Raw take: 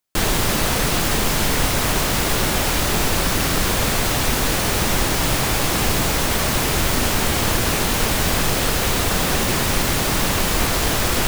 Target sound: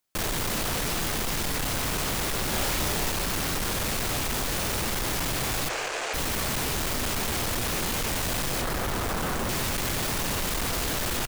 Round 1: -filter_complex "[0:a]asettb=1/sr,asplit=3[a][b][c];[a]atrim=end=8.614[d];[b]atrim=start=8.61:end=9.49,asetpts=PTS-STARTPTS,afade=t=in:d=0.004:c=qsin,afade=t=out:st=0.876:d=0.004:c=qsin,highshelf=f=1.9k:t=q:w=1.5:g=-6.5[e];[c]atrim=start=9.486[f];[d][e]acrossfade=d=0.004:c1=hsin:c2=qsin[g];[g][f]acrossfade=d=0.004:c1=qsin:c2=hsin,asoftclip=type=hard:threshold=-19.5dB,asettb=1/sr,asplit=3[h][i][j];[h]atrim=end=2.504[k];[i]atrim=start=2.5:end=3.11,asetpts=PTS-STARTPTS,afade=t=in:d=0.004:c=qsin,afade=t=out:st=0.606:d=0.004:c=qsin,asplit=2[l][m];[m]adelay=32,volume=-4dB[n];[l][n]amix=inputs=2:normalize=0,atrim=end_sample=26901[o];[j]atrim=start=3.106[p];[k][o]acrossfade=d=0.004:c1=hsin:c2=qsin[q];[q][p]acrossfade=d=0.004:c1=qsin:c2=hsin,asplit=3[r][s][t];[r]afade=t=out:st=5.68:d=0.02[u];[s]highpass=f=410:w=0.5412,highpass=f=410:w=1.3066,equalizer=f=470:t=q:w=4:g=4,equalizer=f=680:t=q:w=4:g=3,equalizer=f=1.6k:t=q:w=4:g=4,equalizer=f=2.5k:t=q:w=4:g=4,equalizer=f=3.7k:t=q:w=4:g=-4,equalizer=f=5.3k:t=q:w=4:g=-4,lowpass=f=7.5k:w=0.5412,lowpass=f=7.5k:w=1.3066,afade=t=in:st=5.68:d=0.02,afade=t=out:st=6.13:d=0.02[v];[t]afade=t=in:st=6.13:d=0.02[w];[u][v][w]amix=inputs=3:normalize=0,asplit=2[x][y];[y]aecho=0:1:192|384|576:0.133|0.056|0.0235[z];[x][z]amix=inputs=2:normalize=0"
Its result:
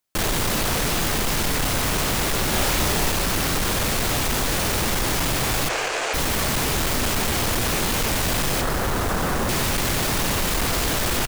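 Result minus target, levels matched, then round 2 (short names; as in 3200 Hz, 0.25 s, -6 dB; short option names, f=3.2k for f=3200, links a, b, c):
hard clip: distortion -4 dB
-filter_complex "[0:a]asettb=1/sr,asplit=3[a][b][c];[a]atrim=end=8.614[d];[b]atrim=start=8.61:end=9.49,asetpts=PTS-STARTPTS,afade=t=in:d=0.004:c=qsin,afade=t=out:st=0.876:d=0.004:c=qsin,highshelf=f=1.9k:t=q:w=1.5:g=-6.5[e];[c]atrim=start=9.486[f];[d][e]acrossfade=d=0.004:c1=hsin:c2=qsin[g];[g][f]acrossfade=d=0.004:c1=qsin:c2=hsin,asoftclip=type=hard:threshold=-27dB,asettb=1/sr,asplit=3[h][i][j];[h]atrim=end=2.504[k];[i]atrim=start=2.5:end=3.11,asetpts=PTS-STARTPTS,afade=t=in:d=0.004:c=qsin,afade=t=out:st=0.606:d=0.004:c=qsin,asplit=2[l][m];[m]adelay=32,volume=-4dB[n];[l][n]amix=inputs=2:normalize=0,atrim=end_sample=26901[o];[j]atrim=start=3.106[p];[k][o]acrossfade=d=0.004:c1=hsin:c2=qsin[q];[q][p]acrossfade=d=0.004:c1=qsin:c2=hsin,asplit=3[r][s][t];[r]afade=t=out:st=5.68:d=0.02[u];[s]highpass=f=410:w=0.5412,highpass=f=410:w=1.3066,equalizer=f=470:t=q:w=4:g=4,equalizer=f=680:t=q:w=4:g=3,equalizer=f=1.6k:t=q:w=4:g=4,equalizer=f=2.5k:t=q:w=4:g=4,equalizer=f=3.7k:t=q:w=4:g=-4,equalizer=f=5.3k:t=q:w=4:g=-4,lowpass=f=7.5k:w=0.5412,lowpass=f=7.5k:w=1.3066,afade=t=in:st=5.68:d=0.02,afade=t=out:st=6.13:d=0.02[v];[t]afade=t=in:st=6.13:d=0.02[w];[u][v][w]amix=inputs=3:normalize=0,asplit=2[x][y];[y]aecho=0:1:192|384|576:0.133|0.056|0.0235[z];[x][z]amix=inputs=2:normalize=0"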